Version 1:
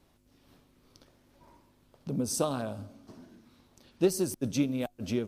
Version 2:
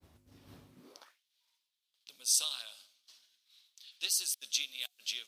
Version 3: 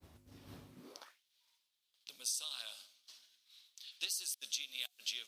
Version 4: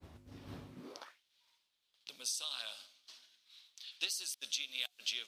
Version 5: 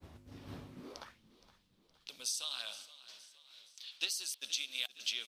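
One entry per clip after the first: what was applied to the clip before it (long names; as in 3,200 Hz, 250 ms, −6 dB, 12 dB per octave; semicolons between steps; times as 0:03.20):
high-pass filter sweep 78 Hz → 3,500 Hz, 0:00.67–0:01.22; downward expander −60 dBFS; level +4 dB
downward compressor 16 to 1, threshold −37 dBFS, peak gain reduction 14 dB; level +2 dB
low-pass filter 3,600 Hz 6 dB per octave; level +5.5 dB
echo with shifted repeats 468 ms, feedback 52%, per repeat −31 Hz, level −17.5 dB; level +1 dB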